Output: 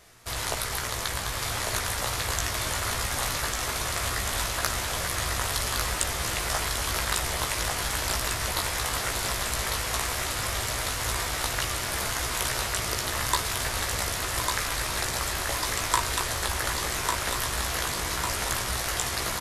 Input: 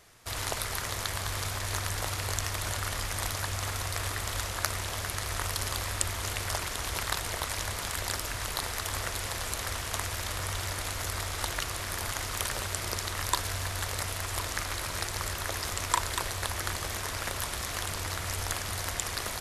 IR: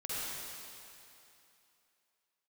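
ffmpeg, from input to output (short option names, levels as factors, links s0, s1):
-filter_complex "[0:a]acontrast=46,asplit=2[s0][s1];[s1]adelay=16,volume=0.631[s2];[s0][s2]amix=inputs=2:normalize=0,aecho=1:1:1149|2298|3447|4596|5745|6894|8043|9192:0.631|0.36|0.205|0.117|0.0666|0.038|0.0216|0.0123,volume=0.631"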